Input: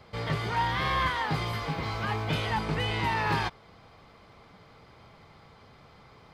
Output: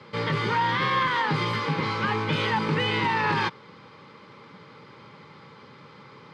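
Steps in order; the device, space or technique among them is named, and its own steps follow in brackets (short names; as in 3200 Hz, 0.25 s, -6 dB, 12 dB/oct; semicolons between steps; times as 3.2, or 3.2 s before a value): PA system with an anti-feedback notch (HPF 130 Hz 24 dB/oct; Butterworth band-stop 700 Hz, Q 3.1; limiter -23 dBFS, peak gain reduction 6.5 dB); air absorption 84 m; gain +8 dB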